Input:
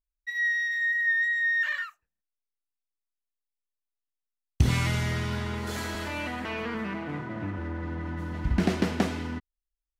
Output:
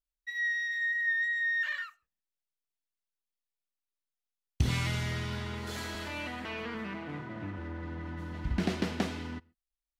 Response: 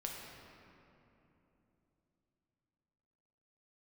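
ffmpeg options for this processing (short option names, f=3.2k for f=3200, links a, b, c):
-filter_complex "[0:a]equalizer=f=3.7k:w=1:g=4,asplit=2[a][b];[1:a]atrim=start_sample=2205,atrim=end_sample=6615[c];[b][c]afir=irnorm=-1:irlink=0,volume=-19dB[d];[a][d]amix=inputs=2:normalize=0,volume=-6.5dB"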